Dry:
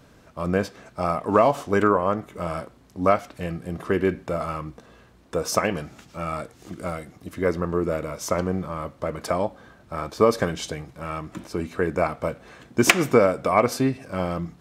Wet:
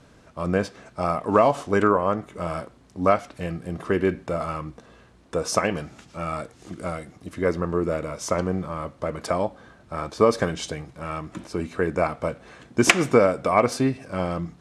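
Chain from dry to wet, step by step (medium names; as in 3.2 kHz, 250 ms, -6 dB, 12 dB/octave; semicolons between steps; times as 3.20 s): steep low-pass 11 kHz 36 dB/octave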